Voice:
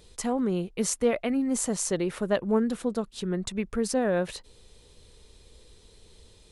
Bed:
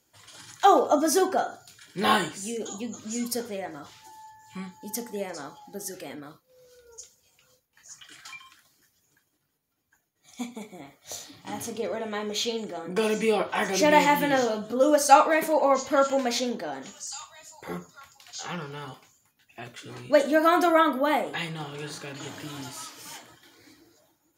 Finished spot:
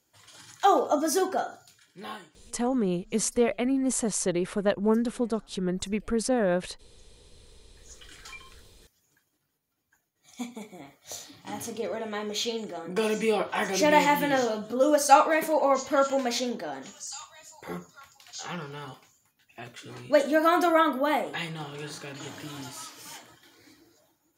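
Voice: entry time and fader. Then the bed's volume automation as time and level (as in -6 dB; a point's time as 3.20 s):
2.35 s, +0.5 dB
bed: 1.62 s -3 dB
2.30 s -23.5 dB
7.03 s -23.5 dB
8.07 s -1.5 dB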